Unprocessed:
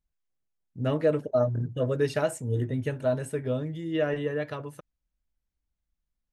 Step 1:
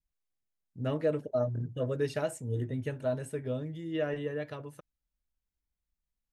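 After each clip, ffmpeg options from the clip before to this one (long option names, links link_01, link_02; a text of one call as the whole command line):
ffmpeg -i in.wav -af "adynamicequalizer=threshold=0.00708:dfrequency=1200:dqfactor=1.2:tfrequency=1200:tqfactor=1.2:attack=5:release=100:ratio=0.375:range=2:mode=cutabove:tftype=bell,volume=-5dB" out.wav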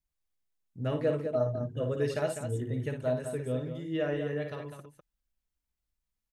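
ffmpeg -i in.wav -af "aecho=1:1:55.39|201.2:0.447|0.398" out.wav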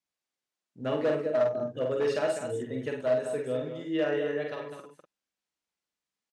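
ffmpeg -i in.wav -filter_complex "[0:a]asoftclip=type=hard:threshold=-24dB,highpass=260,lowpass=7400,asplit=2[link_01][link_02];[link_02]adelay=46,volume=-5dB[link_03];[link_01][link_03]amix=inputs=2:normalize=0,volume=3dB" out.wav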